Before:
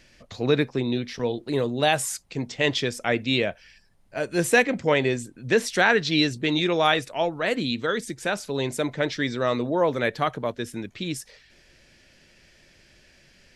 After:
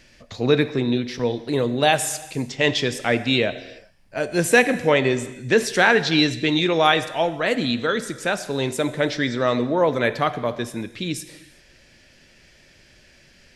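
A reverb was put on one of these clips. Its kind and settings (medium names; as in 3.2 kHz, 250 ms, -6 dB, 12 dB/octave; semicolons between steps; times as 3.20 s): gated-style reverb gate 420 ms falling, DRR 11.5 dB; trim +3 dB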